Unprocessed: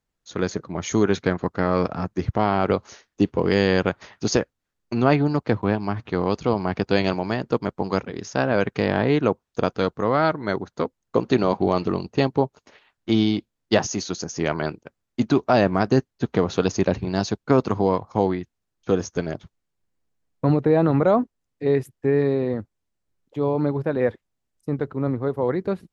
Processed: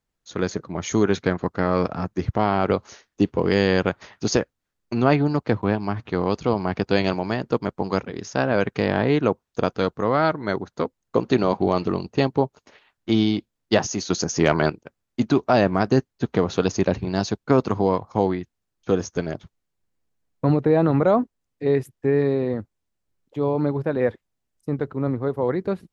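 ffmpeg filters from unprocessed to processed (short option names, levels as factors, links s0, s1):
-filter_complex "[0:a]asettb=1/sr,asplit=3[s0][s1][s2];[s0]atrim=end=14.104[s3];[s1]atrim=start=14.1:end=14.7,asetpts=PTS-STARTPTS,afade=t=in:d=0.004:c=qsin,afade=t=out:st=0.596:d=0.004:c=qsin,acontrast=54[s4];[s2]atrim=start=14.696[s5];[s3][s4]acrossfade=d=0.004:c1=hsin:c2=qsin[s6];[s6][s5]acrossfade=d=0.004:c1=qsin:c2=hsin"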